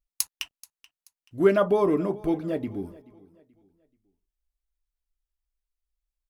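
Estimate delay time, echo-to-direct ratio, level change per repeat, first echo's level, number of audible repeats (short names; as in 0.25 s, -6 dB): 0.431 s, -21.0 dB, -9.0 dB, -21.5 dB, 2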